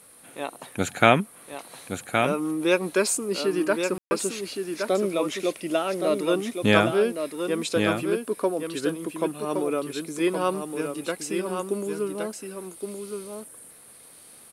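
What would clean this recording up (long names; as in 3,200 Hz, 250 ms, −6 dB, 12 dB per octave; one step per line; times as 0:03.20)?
ambience match 0:03.98–0:04.11
echo removal 1,118 ms −6 dB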